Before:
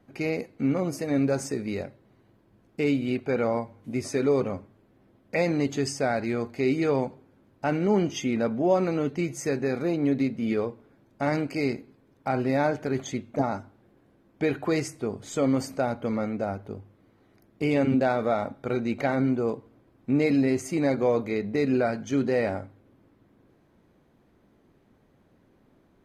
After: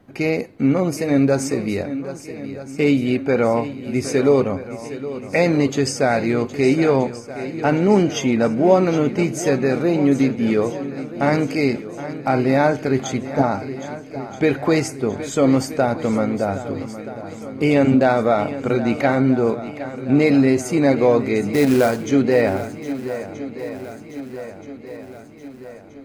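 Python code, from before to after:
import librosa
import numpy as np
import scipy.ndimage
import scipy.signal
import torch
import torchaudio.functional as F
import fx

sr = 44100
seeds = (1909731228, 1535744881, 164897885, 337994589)

y = fx.quant_float(x, sr, bits=2, at=(21.53, 22.07))
y = fx.echo_swing(y, sr, ms=1277, ratio=1.5, feedback_pct=52, wet_db=-13.5)
y = F.gain(torch.from_numpy(y), 8.0).numpy()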